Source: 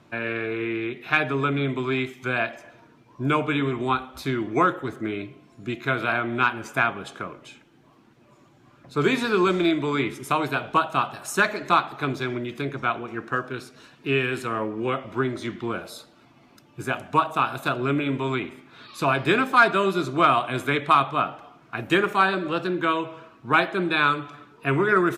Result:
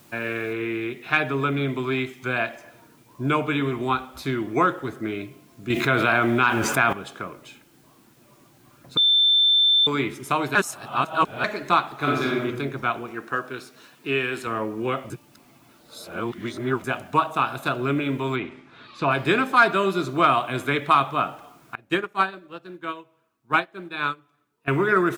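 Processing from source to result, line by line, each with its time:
0.53 noise floor step -56 dB -62 dB
5.7–6.93 fast leveller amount 70%
8.97–9.87 bleep 3550 Hz -14.5 dBFS
10.55–11.44 reverse
11.97–12.43 reverb throw, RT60 0.87 s, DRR -3.5 dB
13.11–14.47 low shelf 150 Hz -11 dB
15.1–16.84 reverse
18.36–19.11 LPF 3900 Hz
21.75–24.68 upward expander 2.5:1, over -31 dBFS

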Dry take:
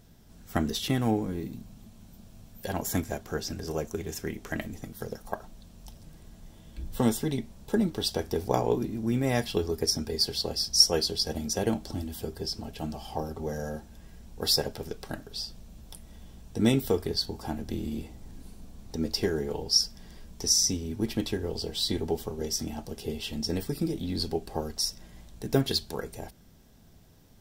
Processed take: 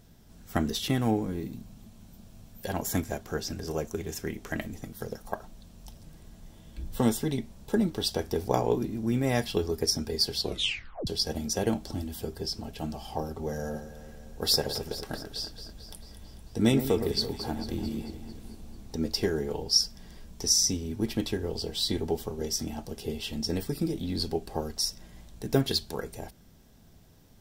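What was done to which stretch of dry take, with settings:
10.41 tape stop 0.66 s
13.53–18.95 echo with dull and thin repeats by turns 0.111 s, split 1800 Hz, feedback 76%, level -9 dB

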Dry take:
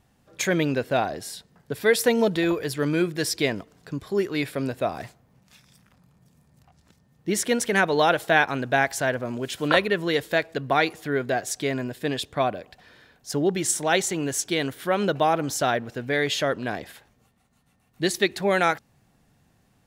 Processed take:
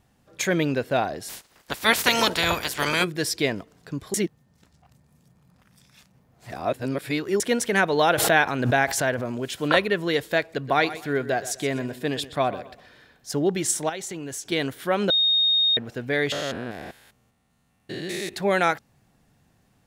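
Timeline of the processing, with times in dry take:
1.28–3.03 spectral limiter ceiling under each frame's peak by 29 dB
4.14–7.4 reverse
8.13–9.43 backwards sustainer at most 52 dB/s
10.41–13.39 feedback echo 0.125 s, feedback 30%, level -15 dB
13.89–14.52 compressor, threshold -30 dBFS
15.1–15.77 bleep 3710 Hz -17 dBFS
16.32–18.34 stepped spectrum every 0.2 s

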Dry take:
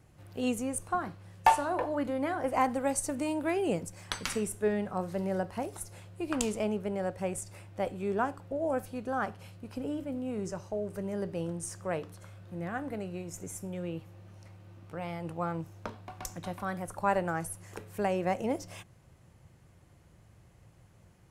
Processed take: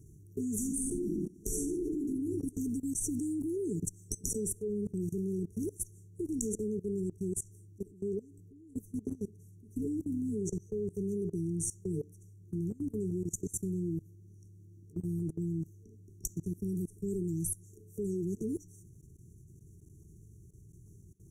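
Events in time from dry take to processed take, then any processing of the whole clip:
0.56–2.01 reverb throw, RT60 1.2 s, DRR -4.5 dB
6.23–8.75 fade out, to -11 dB
whole clip: FFT band-reject 450–5600 Hz; bell 250 Hz -4.5 dB 0.35 oct; level quantiser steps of 21 dB; gain +8.5 dB

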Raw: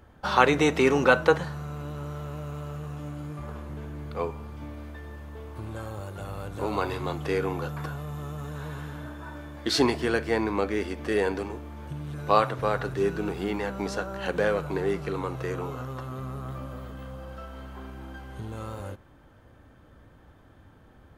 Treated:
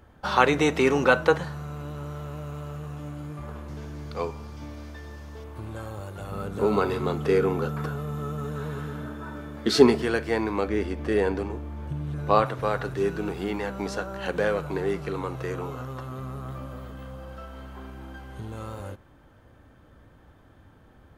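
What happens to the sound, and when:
3.68–5.44 bell 5400 Hz +12 dB 0.85 oct
6.32–10.02 small resonant body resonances 210/410/1300 Hz, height 11 dB
10.68–12.46 tilt -1.5 dB/oct

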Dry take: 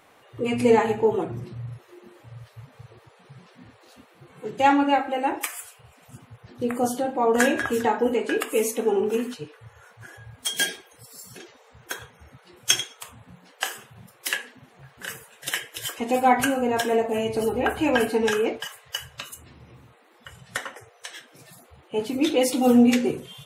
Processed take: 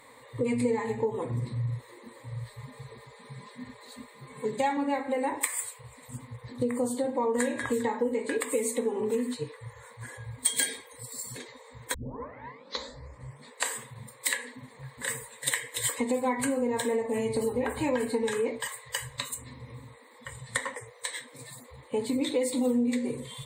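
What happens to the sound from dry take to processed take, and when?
2.48–4.77 comb 4.9 ms
11.94 tape start 1.80 s
whole clip: ripple EQ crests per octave 1, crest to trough 14 dB; compressor 5:1, threshold -26 dBFS; bell 8900 Hz +6 dB 0.35 oct

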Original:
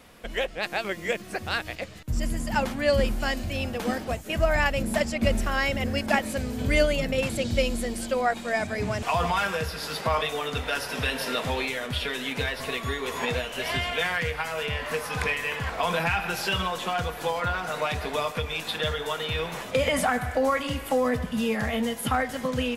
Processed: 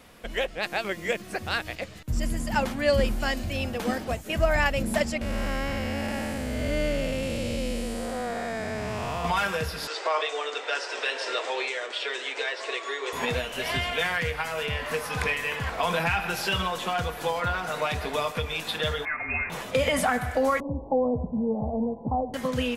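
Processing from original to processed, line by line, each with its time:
5.21–9.25 time blur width 0.396 s
9.87–13.13 Chebyshev band-pass 330–8300 Hz, order 5
19.05–19.5 inverted band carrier 2600 Hz
20.6–22.34 steep low-pass 960 Hz 72 dB/oct

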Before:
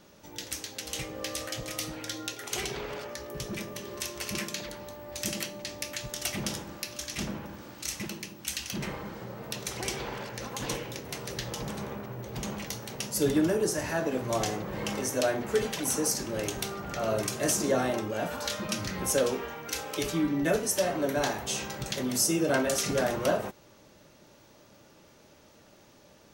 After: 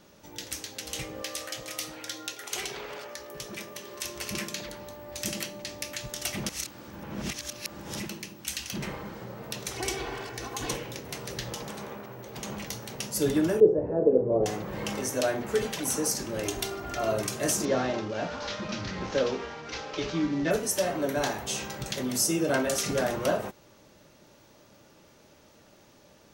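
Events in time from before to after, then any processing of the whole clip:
1.22–4.05 low shelf 270 Hz -11.5 dB
6.49–8 reverse
9.74–10.71 comb 2.7 ms
11.58–12.5 low shelf 160 Hz -11.5 dB
13.6–14.46 synth low-pass 470 Hz, resonance Q 5.1
16.45–17.12 comb 2.9 ms
17.65–20.51 CVSD 32 kbps

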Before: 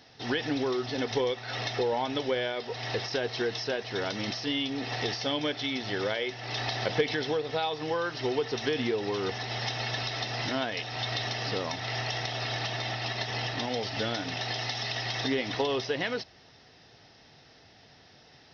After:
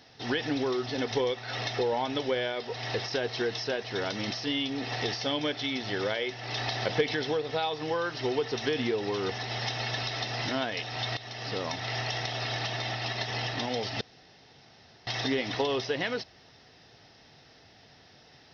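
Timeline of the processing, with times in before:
11.17–11.67 fade in linear, from -15 dB
14.01–15.07 room tone

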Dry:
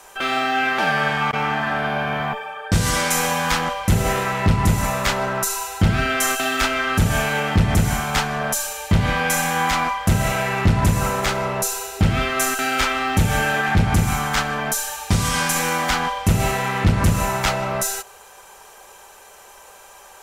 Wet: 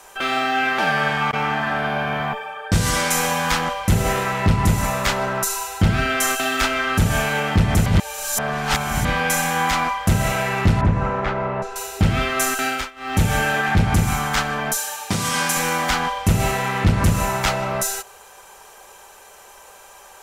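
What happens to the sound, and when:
7.86–9.05 reverse
10.81–11.76 LPF 1800 Hz
12.67–13.2 dip -22 dB, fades 0.24 s
14.77–15.57 HPF 160 Hz

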